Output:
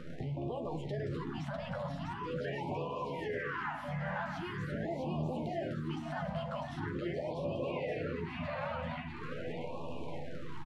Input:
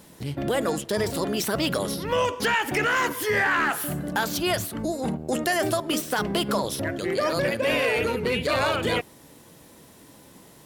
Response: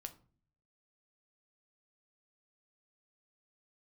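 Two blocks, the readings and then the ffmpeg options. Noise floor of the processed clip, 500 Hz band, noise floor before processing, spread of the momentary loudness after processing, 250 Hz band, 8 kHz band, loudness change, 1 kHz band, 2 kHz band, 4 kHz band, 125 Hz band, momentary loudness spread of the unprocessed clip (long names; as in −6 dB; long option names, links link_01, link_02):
−42 dBFS, −12.5 dB, −51 dBFS, 5 LU, −11.0 dB, below −30 dB, −13.5 dB, −12.5 dB, −17.0 dB, −20.5 dB, −5.0 dB, 6 LU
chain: -filter_complex "[0:a]acrusher=bits=8:dc=4:mix=0:aa=0.000001,equalizer=frequency=770:width_type=o:width=1.1:gain=6.5,acompressor=threshold=-37dB:ratio=3,equalizer=frequency=140:width_type=o:width=0.4:gain=9.5,asplit=2[link_01][link_02];[link_02]adelay=12,volume=-5dB[link_03];[link_01][link_03]amix=inputs=2:normalize=0,alimiter=level_in=12dB:limit=-24dB:level=0:latency=1:release=215,volume=-12dB,lowpass=2300,aecho=1:1:650|1170|1586|1919|2185:0.631|0.398|0.251|0.158|0.1,asplit=2[link_04][link_05];[1:a]atrim=start_sample=2205,asetrate=31311,aresample=44100[link_06];[link_05][link_06]afir=irnorm=-1:irlink=0,volume=3dB[link_07];[link_04][link_07]amix=inputs=2:normalize=0,afftfilt=real='re*(1-between(b*sr/1024,340*pow(1700/340,0.5+0.5*sin(2*PI*0.43*pts/sr))/1.41,340*pow(1700/340,0.5+0.5*sin(2*PI*0.43*pts/sr))*1.41))':imag='im*(1-between(b*sr/1024,340*pow(1700/340,0.5+0.5*sin(2*PI*0.43*pts/sr))/1.41,340*pow(1700/340,0.5+0.5*sin(2*PI*0.43*pts/sr))*1.41))':win_size=1024:overlap=0.75"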